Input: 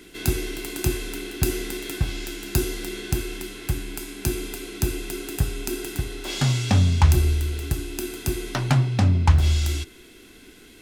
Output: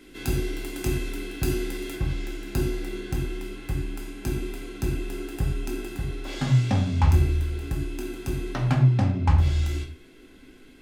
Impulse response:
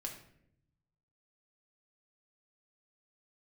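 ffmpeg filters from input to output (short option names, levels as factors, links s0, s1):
-filter_complex "[0:a]asetnsamples=n=441:p=0,asendcmd='1.95 highshelf g -10.5',highshelf=f=3100:g=-5.5[s0];[1:a]atrim=start_sample=2205,afade=t=out:st=0.17:d=0.01,atrim=end_sample=7938[s1];[s0][s1]afir=irnorm=-1:irlink=0"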